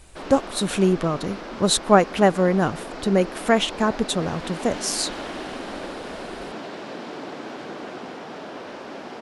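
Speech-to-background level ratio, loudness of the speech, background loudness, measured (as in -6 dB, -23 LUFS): 13.0 dB, -22.0 LUFS, -35.0 LUFS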